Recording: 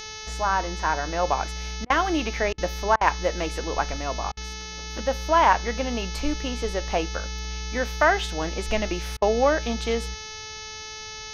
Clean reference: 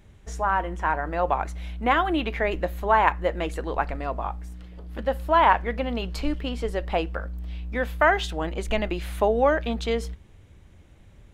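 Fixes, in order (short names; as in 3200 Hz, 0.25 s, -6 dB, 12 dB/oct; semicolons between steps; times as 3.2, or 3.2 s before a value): de-hum 433.9 Hz, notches 15; interpolate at 1.85/2.53/2.96/4.32/9.17, 49 ms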